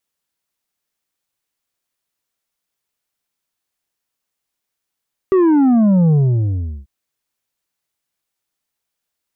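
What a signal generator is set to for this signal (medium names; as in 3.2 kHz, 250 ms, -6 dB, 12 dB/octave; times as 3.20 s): sub drop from 390 Hz, over 1.54 s, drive 6 dB, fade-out 0.74 s, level -10 dB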